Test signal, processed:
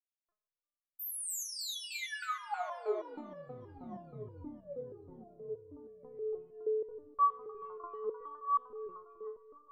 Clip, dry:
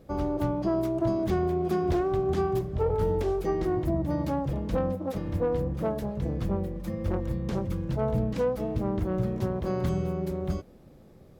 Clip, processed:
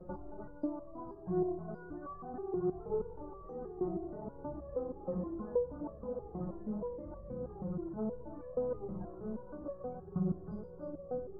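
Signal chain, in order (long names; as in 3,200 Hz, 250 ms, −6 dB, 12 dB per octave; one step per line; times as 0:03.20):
high shelf with overshoot 1,500 Hz −9.5 dB, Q 1.5
mains-hum notches 50/100/150/200/250/300 Hz
echo with a time of its own for lows and highs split 550 Hz, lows 659 ms, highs 306 ms, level −7 dB
dynamic equaliser 170 Hz, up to +5 dB, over −43 dBFS, Q 1
brickwall limiter −27 dBFS
downward compressor 5 to 1, threshold −38 dBFS
phase shifter 0.68 Hz, delay 4.4 ms, feedback 37%
spectral peaks only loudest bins 64
downward expander −57 dBFS
spring reverb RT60 2.7 s, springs 30 ms, chirp 75 ms, DRR 8.5 dB
step-sequenced resonator 6.3 Hz 180–570 Hz
level +15 dB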